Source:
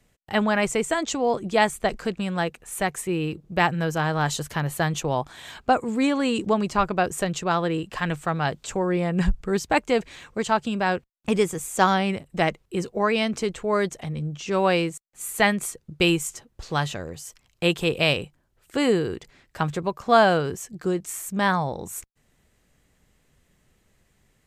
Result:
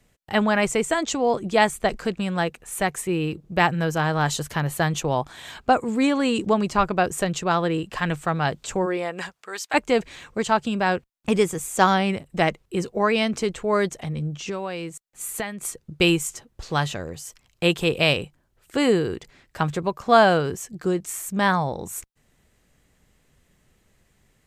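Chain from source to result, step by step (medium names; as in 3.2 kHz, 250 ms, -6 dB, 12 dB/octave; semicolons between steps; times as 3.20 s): 8.85–9.73 s: high-pass 310 Hz -> 1.3 kHz 12 dB/octave; 14.42–15.65 s: compression 10:1, threshold -28 dBFS, peak gain reduction 15 dB; trim +1.5 dB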